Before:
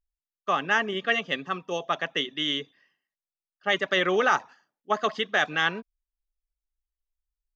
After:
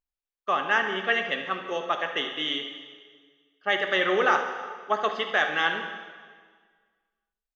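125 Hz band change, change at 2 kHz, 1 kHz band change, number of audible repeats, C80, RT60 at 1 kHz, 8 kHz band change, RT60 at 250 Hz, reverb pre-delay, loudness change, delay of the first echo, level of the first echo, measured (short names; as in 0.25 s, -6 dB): -6.0 dB, +1.0 dB, +1.0 dB, 1, 8.5 dB, 1.7 s, n/a, 1.8 s, 5 ms, 0.0 dB, 74 ms, -12.5 dB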